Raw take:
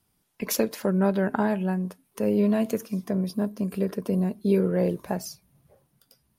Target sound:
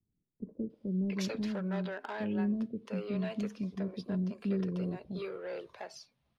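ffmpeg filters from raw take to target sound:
ffmpeg -i in.wav -filter_complex "[0:a]lowpass=frequency=3800:width_type=q:width=1.5,acrossover=split=370|1800[link_01][link_02][link_03];[link_02]asoftclip=type=tanh:threshold=-28.5dB[link_04];[link_01][link_04][link_03]amix=inputs=3:normalize=0,acrossover=split=410[link_05][link_06];[link_06]adelay=700[link_07];[link_05][link_07]amix=inputs=2:normalize=0,volume=-7.5dB" out.wav

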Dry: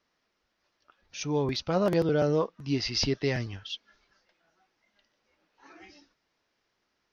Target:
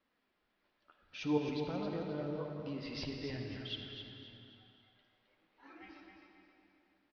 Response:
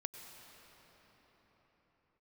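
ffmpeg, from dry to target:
-filter_complex "[0:a]lowpass=frequency=4000:width=0.5412,lowpass=frequency=4000:width=1.3066,equalizer=frequency=260:width_type=o:width=0.55:gain=4,asettb=1/sr,asplit=3[link_01][link_02][link_03];[link_01]atrim=end=1.374[link_04];[link_02]atrim=start=1.37:end=3.6,asetpts=PTS-STARTPTS,afade=type=in:duration=0.004:curve=qsin,afade=type=out:start_time=2.226:duration=0.004:curve=qsin,acompressor=threshold=-36dB:ratio=6[link_05];[link_03]atrim=start=3.596[link_06];[link_04][link_05]acrossfade=duration=0.004:curve1=hsin:curve2=qsin[link_07];[link_07][link_06]acrossfade=duration=0.004:curve1=qsin:curve2=hsin,flanger=delay=3.7:depth=8.7:regen=-38:speed=0.52:shape=sinusoidal,aecho=1:1:264|528|792|1056:0.422|0.139|0.0459|0.0152[link_08];[1:a]atrim=start_sample=2205,asetrate=79380,aresample=44100[link_09];[link_08][link_09]afir=irnorm=-1:irlink=0,volume=8dB"

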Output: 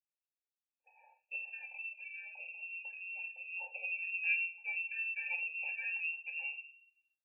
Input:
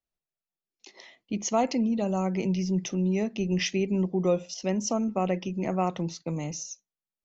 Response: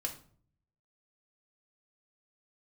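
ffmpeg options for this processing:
-filter_complex "[0:a]asettb=1/sr,asplit=3[link_01][link_02][link_03];[link_01]atrim=end=1.464[link_04];[link_02]atrim=start=1.46:end=3.74,asetpts=PTS-STARTPTS,afade=type=in:duration=0.004:curve=qsin,afade=type=out:start_time=2.276:duration=0.004:curve=qsin,acompressor=threshold=-32dB:ratio=4[link_05];[link_03]atrim=start=3.736[link_06];[link_04][link_05]acrossfade=duration=0.004:curve1=hsin:curve2=qsin[link_07];[link_07][link_06]acrossfade=duration=0.004:curve1=qsin:curve2=hsin,asuperstop=centerf=1500:order=4:qfactor=1.9[link_08];[1:a]atrim=start_sample=2205,asetrate=52920,aresample=44100[link_09];[link_08][link_09]afir=irnorm=-1:irlink=0,lowpass=frequency=2500:width_type=q:width=0.5098,lowpass=frequency=2500:width_type=q:width=0.6013,lowpass=frequency=2500:width_type=q:width=0.9,lowpass=frequency=2500:width_type=q:width=2.563,afreqshift=-2900,afftfilt=real='re*eq(mod(floor(b*sr/1024/460),2),1)':imag='im*eq(mod(floor(b*sr/1024/460),2),1)':win_size=1024:overlap=0.75,volume=-8dB"

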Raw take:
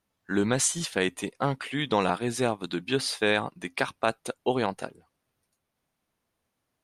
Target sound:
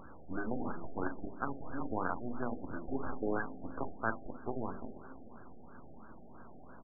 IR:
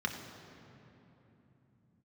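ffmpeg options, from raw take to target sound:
-filter_complex "[0:a]aeval=exprs='val(0)+0.5*0.0141*sgn(val(0))':channel_layout=same,acrossover=split=230|1700[link_01][link_02][link_03];[link_01]acompressor=threshold=-48dB:ratio=6[link_04];[link_04][link_02][link_03]amix=inputs=3:normalize=0,bandreject=frequency=50:width_type=h:width=6,bandreject=frequency=100:width_type=h:width=6,bandreject=frequency=150:width_type=h:width=6,bandreject=frequency=200:width_type=h:width=6,bandreject=frequency=250:width_type=h:width=6,bandreject=frequency=300:width_type=h:width=6,bandreject=frequency=350:width_type=h:width=6,asplit=2[link_05][link_06];[link_06]equalizer=frequency=70:width_type=o:width=1.2:gain=-12[link_07];[1:a]atrim=start_sample=2205,adelay=29[link_08];[link_07][link_08]afir=irnorm=-1:irlink=0,volume=-13.5dB[link_09];[link_05][link_09]amix=inputs=2:normalize=0,acompressor=mode=upward:threshold=-43dB:ratio=2.5,equalizer=frequency=125:width_type=o:width=1:gain=-8,equalizer=frequency=250:width_type=o:width=1:gain=6,equalizer=frequency=500:width_type=o:width=1:gain=-12,equalizer=frequency=1000:width_type=o:width=1:gain=-6,equalizer=frequency=2000:width_type=o:width=1:gain=7,equalizer=frequency=4000:width_type=o:width=1:gain=4,equalizer=frequency=8000:width_type=o:width=1:gain=6,acrusher=bits=4:dc=4:mix=0:aa=0.000001,aecho=1:1:45|57:0.237|0.211,afftfilt=real='re*lt(b*sr/1024,790*pow(1700/790,0.5+0.5*sin(2*PI*3*pts/sr)))':imag='im*lt(b*sr/1024,790*pow(1700/790,0.5+0.5*sin(2*PI*3*pts/sr)))':win_size=1024:overlap=0.75,volume=-3dB"

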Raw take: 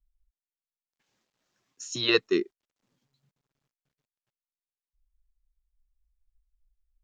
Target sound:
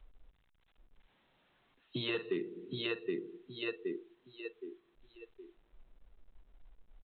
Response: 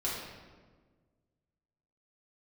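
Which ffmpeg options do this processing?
-filter_complex "[0:a]asplit=2[link_01][link_02];[link_02]adelay=46,volume=-13dB[link_03];[link_01][link_03]amix=inputs=2:normalize=0,aecho=1:1:769|1538|2307|3076:0.398|0.151|0.0575|0.0218,acrossover=split=170[link_04][link_05];[link_05]asoftclip=type=hard:threshold=-17dB[link_06];[link_04][link_06]amix=inputs=2:normalize=0,adynamicequalizer=threshold=0.00447:dfrequency=170:dqfactor=2:tfrequency=170:tqfactor=2:attack=5:release=100:ratio=0.375:range=2.5:mode=boostabove:tftype=bell,asplit=2[link_07][link_08];[1:a]atrim=start_sample=2205[link_09];[link_08][link_09]afir=irnorm=-1:irlink=0,volume=-19.5dB[link_10];[link_07][link_10]amix=inputs=2:normalize=0,acompressor=mode=upward:threshold=-49dB:ratio=2.5,equalizer=frequency=850:width_type=o:width=0.59:gain=4,afftdn=noise_reduction=17:noise_floor=-44,acompressor=threshold=-35dB:ratio=12,volume=3.5dB" -ar 8000 -c:a pcm_alaw

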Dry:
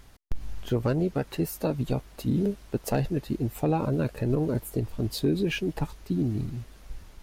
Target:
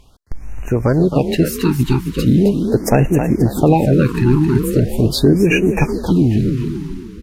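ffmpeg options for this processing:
ffmpeg -i in.wav -filter_complex "[0:a]highshelf=frequency=12000:gain=-9,dynaudnorm=framelen=140:gausssize=11:maxgain=15dB,equalizer=frequency=2400:width=1.5:gain=2,asplit=5[link_01][link_02][link_03][link_04][link_05];[link_02]adelay=266,afreqshift=33,volume=-8dB[link_06];[link_03]adelay=532,afreqshift=66,volume=-16.6dB[link_07];[link_04]adelay=798,afreqshift=99,volume=-25.3dB[link_08];[link_05]adelay=1064,afreqshift=132,volume=-33.9dB[link_09];[link_01][link_06][link_07][link_08][link_09]amix=inputs=5:normalize=0,asplit=2[link_10][link_11];[link_11]acompressor=threshold=-20dB:ratio=6,volume=-1dB[link_12];[link_10][link_12]amix=inputs=2:normalize=0,afftfilt=real='re*(1-between(b*sr/1024,550*pow(4100/550,0.5+0.5*sin(2*PI*0.4*pts/sr))/1.41,550*pow(4100/550,0.5+0.5*sin(2*PI*0.4*pts/sr))*1.41))':imag='im*(1-between(b*sr/1024,550*pow(4100/550,0.5+0.5*sin(2*PI*0.4*pts/sr))/1.41,550*pow(4100/550,0.5+0.5*sin(2*PI*0.4*pts/sr))*1.41))':win_size=1024:overlap=0.75,volume=-2dB" out.wav

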